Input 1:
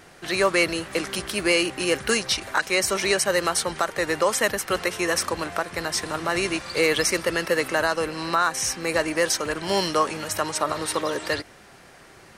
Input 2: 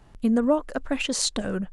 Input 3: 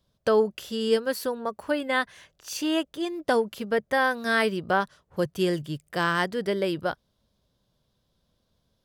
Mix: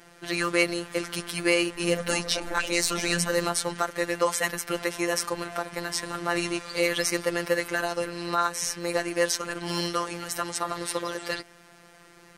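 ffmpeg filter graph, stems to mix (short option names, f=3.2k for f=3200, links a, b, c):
-filter_complex "[0:a]volume=-1dB[a];[1:a]flanger=delay=16:depth=4.7:speed=2.2,asoftclip=type=tanh:threshold=-20dB,adelay=1600,volume=1dB,asplit=2[b][c];[c]volume=-7.5dB,aecho=0:1:275|550|825|1100|1375:1|0.39|0.152|0.0593|0.0231[d];[a][b][d]amix=inputs=3:normalize=0,highshelf=f=9.2k:g=2,afftfilt=real='hypot(re,im)*cos(PI*b)':imag='0':win_size=1024:overlap=0.75"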